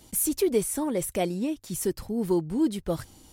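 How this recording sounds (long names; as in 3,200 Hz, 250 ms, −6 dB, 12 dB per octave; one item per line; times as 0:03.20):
background noise floor −55 dBFS
spectral slope −4.5 dB per octave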